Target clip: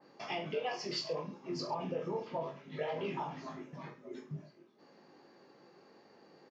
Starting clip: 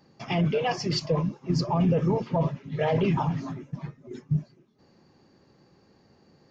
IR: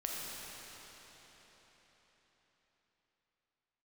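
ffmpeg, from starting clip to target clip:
-filter_complex "[0:a]highpass=350,aemphasis=mode=reproduction:type=50fm,acompressor=threshold=0.00398:ratio=2,asplit=2[s0][s1];[s1]aecho=0:1:20|43|69.45|99.87|134.8:0.631|0.398|0.251|0.158|0.1[s2];[s0][s2]amix=inputs=2:normalize=0,adynamicequalizer=threshold=0.00178:dfrequency=2800:dqfactor=0.7:tfrequency=2800:tqfactor=0.7:attack=5:release=100:ratio=0.375:range=2.5:mode=boostabove:tftype=highshelf,volume=1.12"

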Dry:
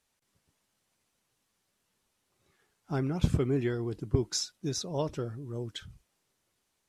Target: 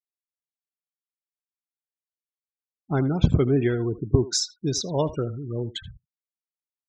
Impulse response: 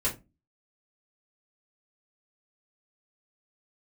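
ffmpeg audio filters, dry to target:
-filter_complex "[0:a]afftfilt=real='re*gte(hypot(re,im),0.01)':imag='im*gte(hypot(re,im),0.01)':win_size=1024:overlap=0.75,asplit=2[s0][s1];[s1]adelay=80,highpass=300,lowpass=3400,asoftclip=type=hard:threshold=0.0944,volume=0.178[s2];[s0][s2]amix=inputs=2:normalize=0,volume=2.37"

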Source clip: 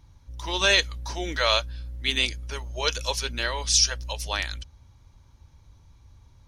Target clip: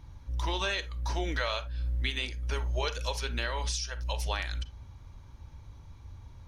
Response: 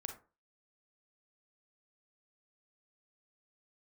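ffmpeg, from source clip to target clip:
-filter_complex "[0:a]acompressor=threshold=0.02:ratio=5,asplit=2[s0][s1];[1:a]atrim=start_sample=2205,afade=t=out:st=0.14:d=0.01,atrim=end_sample=6615,lowpass=3900[s2];[s1][s2]afir=irnorm=-1:irlink=0,volume=1.12[s3];[s0][s3]amix=inputs=2:normalize=0"

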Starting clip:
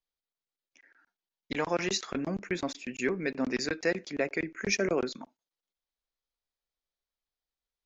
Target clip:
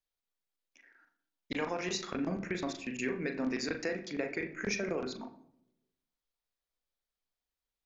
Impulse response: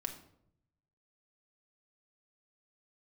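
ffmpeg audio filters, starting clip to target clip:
-filter_complex "[0:a]acompressor=threshold=0.0316:ratio=6,asplit=2[s0][s1];[1:a]atrim=start_sample=2205,lowpass=3300,adelay=39[s2];[s1][s2]afir=irnorm=-1:irlink=0,volume=0.668[s3];[s0][s3]amix=inputs=2:normalize=0,volume=0.841"

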